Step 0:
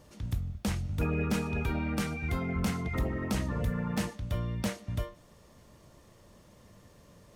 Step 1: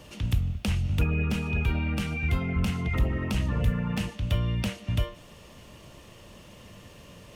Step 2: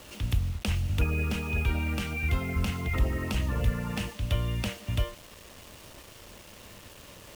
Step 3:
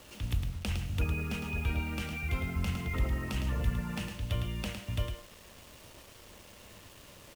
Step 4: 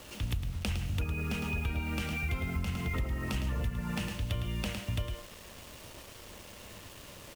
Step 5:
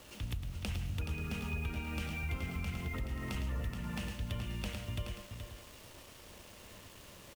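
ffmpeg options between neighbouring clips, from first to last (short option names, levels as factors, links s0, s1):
-filter_complex "[0:a]equalizer=f=2800:w=2.6:g=11.5,acrossover=split=150[s0][s1];[s1]acompressor=threshold=0.0112:ratio=6[s2];[s0][s2]amix=inputs=2:normalize=0,volume=2.37"
-af "equalizer=f=160:w=1.5:g=-6.5,acrusher=bits=7:mix=0:aa=0.000001"
-af "aecho=1:1:108:0.473,volume=0.562"
-af "acompressor=threshold=0.0224:ratio=6,volume=1.58"
-af "aecho=1:1:425:0.422,volume=0.531"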